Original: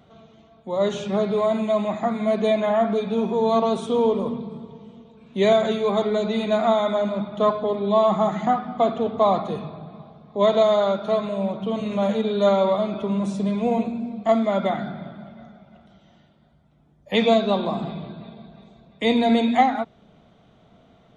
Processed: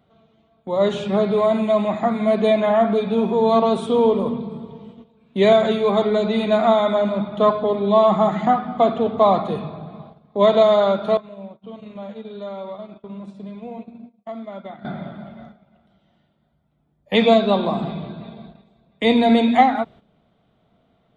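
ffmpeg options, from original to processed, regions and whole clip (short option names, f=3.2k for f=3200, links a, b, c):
-filter_complex "[0:a]asettb=1/sr,asplit=3[a][b][c];[a]atrim=end=11.174[d];[b]atrim=start=11.17:end=14.85,asetpts=PTS-STARTPTS,afade=t=in:d=0.004:c=qsin,afade=t=out:st=3.676:d=0.004:c=qsin,agate=range=-33dB:threshold=-19dB:ratio=3:release=100:detection=peak,acompressor=threshold=-38dB:ratio=3:attack=3.2:release=140:knee=1:detection=peak,lowpass=6k[e];[c]atrim=start=14.846[f];[d][e]acrossfade=d=0.004:c1=hsin:c2=qsin[g];[g][f]acrossfade=d=0.004:c1=qsin:c2=hsin,agate=range=-11dB:threshold=-44dB:ratio=16:detection=peak,equalizer=f=6.2k:w=2.9:g=-9.5,volume=3.5dB"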